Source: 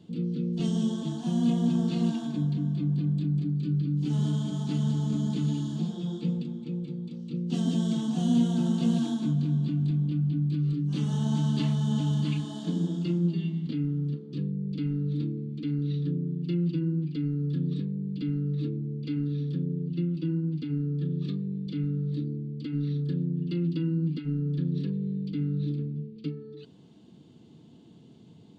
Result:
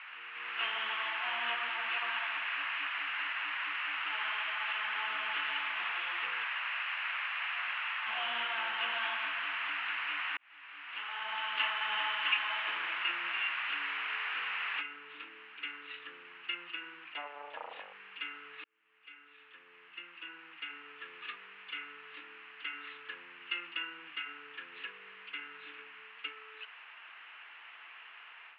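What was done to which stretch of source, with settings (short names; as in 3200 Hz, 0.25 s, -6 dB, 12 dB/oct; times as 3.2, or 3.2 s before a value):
1.55–4.96 tape flanging out of phase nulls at 1.1 Hz, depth 7.5 ms
6.44–8.07 metallic resonator 130 Hz, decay 0.8 s, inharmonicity 0.008
10.37–11.92 fade in
14.81 noise floor step -42 dB -58 dB
17.13–17.93 core saturation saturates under 310 Hz
18.64–21.04 fade in
whole clip: Chebyshev low-pass 2800 Hz, order 5; AGC gain up to 12 dB; HPF 1100 Hz 24 dB/oct; gain +4.5 dB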